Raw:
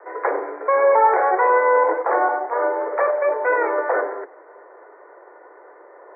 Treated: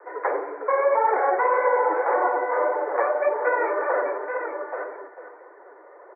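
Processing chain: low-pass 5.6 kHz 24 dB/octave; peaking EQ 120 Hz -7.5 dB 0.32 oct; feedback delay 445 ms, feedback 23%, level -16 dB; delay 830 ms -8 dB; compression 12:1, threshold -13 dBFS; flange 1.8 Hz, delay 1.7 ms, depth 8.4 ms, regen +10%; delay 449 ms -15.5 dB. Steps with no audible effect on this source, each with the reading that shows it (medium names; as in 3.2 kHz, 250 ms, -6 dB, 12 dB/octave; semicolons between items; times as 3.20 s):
low-pass 5.6 kHz: input has nothing above 2 kHz; peaking EQ 120 Hz: input has nothing below 290 Hz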